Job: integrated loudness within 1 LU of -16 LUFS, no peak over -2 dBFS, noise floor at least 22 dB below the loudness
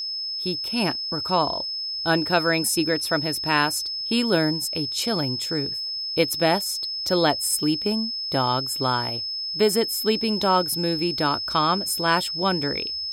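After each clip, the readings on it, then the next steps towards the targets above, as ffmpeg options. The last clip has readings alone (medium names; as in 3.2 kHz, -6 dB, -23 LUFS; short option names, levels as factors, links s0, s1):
steady tone 5.2 kHz; tone level -27 dBFS; loudness -22.5 LUFS; peak level -6.0 dBFS; loudness target -16.0 LUFS
-> -af "bandreject=f=5200:w=30"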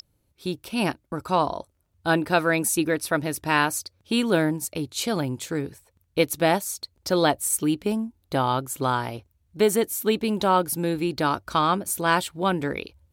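steady tone not found; loudness -24.5 LUFS; peak level -6.5 dBFS; loudness target -16.0 LUFS
-> -af "volume=2.66,alimiter=limit=0.794:level=0:latency=1"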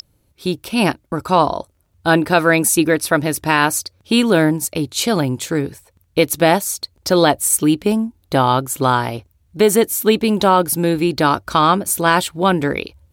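loudness -16.5 LUFS; peak level -2.0 dBFS; noise floor -61 dBFS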